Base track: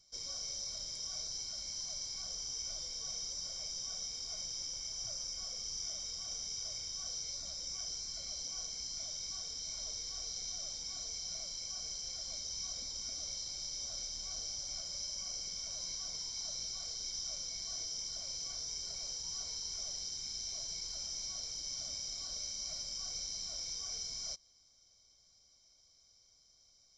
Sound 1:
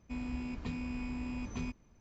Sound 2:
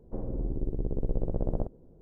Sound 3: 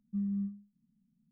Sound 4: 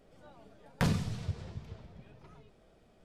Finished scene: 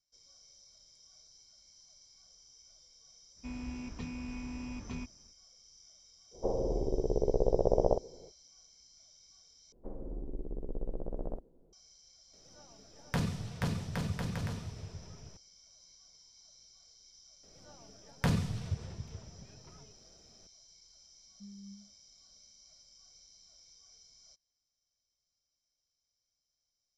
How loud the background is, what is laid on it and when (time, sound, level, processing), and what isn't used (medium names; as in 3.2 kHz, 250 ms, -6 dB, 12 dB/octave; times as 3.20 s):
base track -18.5 dB
3.34 s: add 1 -2.5 dB, fades 0.05 s
6.31 s: add 2 -3.5 dB, fades 0.05 s + high-order bell 630 Hz +14 dB
9.72 s: replace with 2 -6 dB + peaking EQ 100 Hz -11 dB 1.6 oct
12.33 s: add 4 -3.5 dB + bouncing-ball echo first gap 480 ms, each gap 0.7×, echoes 5, each echo -2 dB
17.43 s: add 4 -1.5 dB + peaking EQ 82 Hz +2.5 dB 1.6 oct
21.27 s: add 3 -13.5 dB + phaser 1.8 Hz